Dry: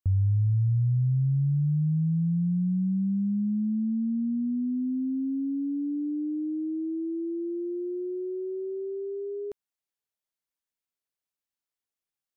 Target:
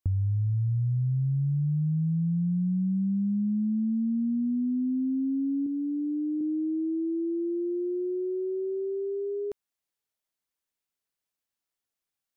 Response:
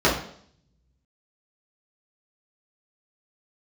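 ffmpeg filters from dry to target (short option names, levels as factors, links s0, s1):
-filter_complex "[0:a]asettb=1/sr,asplit=3[s0][s1][s2];[s0]atrim=end=5.664[s3];[s1]atrim=start=5.66:end=6.41,asetpts=PTS-STARTPTS,afade=t=in:d=0.004:c=qsin,afade=t=out:st=0.746:d=0.004:c=qsin,aecho=1:1:2.2:0.57,atrim=end_sample=33075[s4];[s2]atrim=start=6.406[s5];[s3][s4]acrossfade=d=0.004:c1=hsin:c2=qsin[s6];[s6][s5]acrossfade=d=0.004:c1=qsin:c2=hsin,acompressor=threshold=0.0447:ratio=6,volume=1.33"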